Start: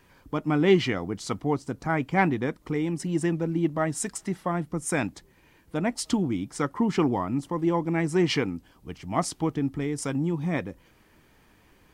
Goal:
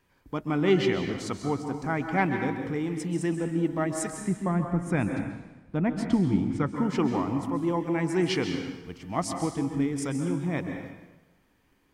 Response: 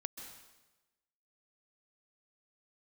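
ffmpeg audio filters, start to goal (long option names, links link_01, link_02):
-filter_complex "[0:a]agate=range=-7dB:threshold=-55dB:ratio=16:detection=peak,asettb=1/sr,asplit=3[link_01][link_02][link_03];[link_01]atrim=end=4.124[link_04];[link_02]atrim=start=4.12:end=6.76,asetpts=PTS-STARTPTS,afade=type=in:duration=0.004:curve=qsin,afade=type=out:start_time=2.636:duration=0.004:curve=qsin,bass=frequency=250:gain=8,treble=frequency=4000:gain=-14[link_05];[link_03]atrim=start=6.756[link_06];[link_04][link_05]acrossfade=duration=0.004:curve1=hsin:curve2=qsin[link_07];[link_07][link_06]acrossfade=duration=0.004:curve1=qsin:curve2=hsin[link_08];[1:a]atrim=start_sample=2205[link_09];[link_08][link_09]afir=irnorm=-1:irlink=0"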